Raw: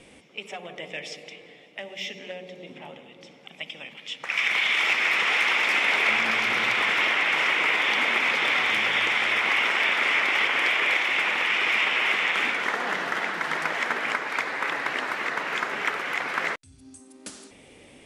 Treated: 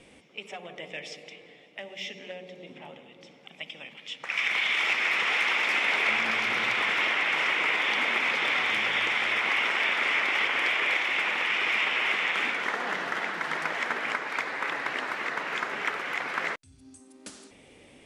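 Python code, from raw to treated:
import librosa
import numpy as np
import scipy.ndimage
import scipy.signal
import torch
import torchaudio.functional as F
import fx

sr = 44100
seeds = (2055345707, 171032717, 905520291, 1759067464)

y = fx.high_shelf(x, sr, hz=12000.0, db=-7.0)
y = y * 10.0 ** (-3.0 / 20.0)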